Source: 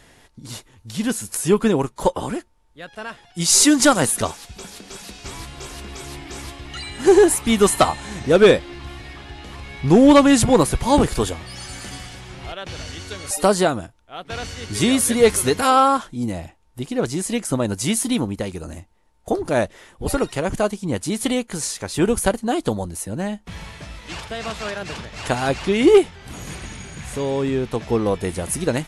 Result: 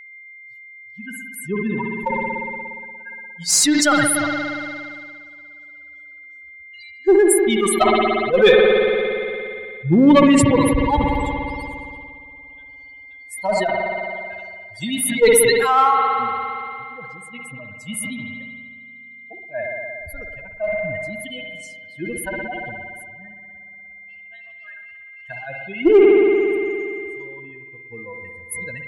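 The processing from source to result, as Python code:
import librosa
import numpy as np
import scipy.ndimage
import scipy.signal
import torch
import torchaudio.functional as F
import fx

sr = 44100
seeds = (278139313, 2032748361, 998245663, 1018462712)

p1 = fx.bin_expand(x, sr, power=3.0)
p2 = fx.clip_asym(p1, sr, top_db=-21.0, bottom_db=-10.5)
p3 = p1 + F.gain(torch.from_numpy(p2), -6.0).numpy()
p4 = p3 + 10.0 ** (-39.0 / 20.0) * np.sin(2.0 * np.pi * 2100.0 * np.arange(len(p3)) / sr)
p5 = fx.rev_spring(p4, sr, rt60_s=3.2, pass_ms=(58,), chirp_ms=20, drr_db=6.5)
y = fx.sustainer(p5, sr, db_per_s=20.0)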